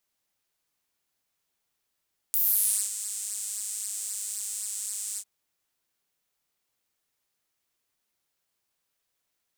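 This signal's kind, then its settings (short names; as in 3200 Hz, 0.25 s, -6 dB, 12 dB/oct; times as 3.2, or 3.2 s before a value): synth patch with pulse-width modulation G#3, filter highpass, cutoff 7800 Hz, Q 4.1, filter envelope 1 oct, filter decay 0.50 s, filter sustain 5%, attack 1.6 ms, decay 0.55 s, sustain -18 dB, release 0.06 s, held 2.84 s, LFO 3.8 Hz, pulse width 22%, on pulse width 16%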